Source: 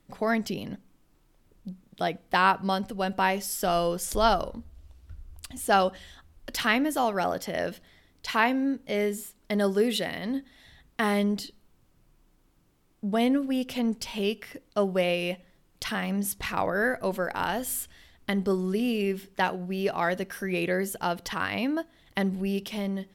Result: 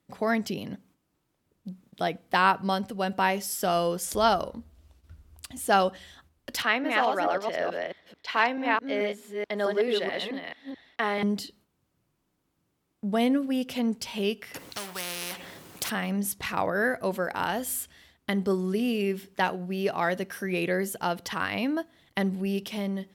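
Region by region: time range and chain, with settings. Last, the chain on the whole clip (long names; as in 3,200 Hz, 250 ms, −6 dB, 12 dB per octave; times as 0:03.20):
0:06.62–0:11.23: delay that plays each chunk backwards 217 ms, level −2 dB + three-way crossover with the lows and the highs turned down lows −13 dB, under 330 Hz, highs −17 dB, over 4,600 Hz
0:14.54–0:15.90: mu-law and A-law mismatch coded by mu + every bin compressed towards the loudest bin 4 to 1
whole clip: high-pass filter 80 Hz 12 dB per octave; noise gate −58 dBFS, range −7 dB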